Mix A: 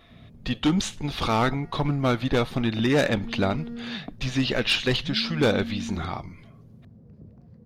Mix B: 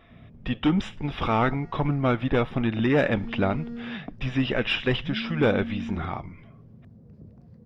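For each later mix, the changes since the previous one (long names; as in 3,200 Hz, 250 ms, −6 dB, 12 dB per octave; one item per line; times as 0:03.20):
speech: add Savitzky-Golay smoothing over 25 samples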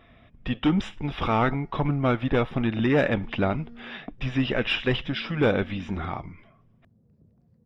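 background −9.0 dB
reverb: off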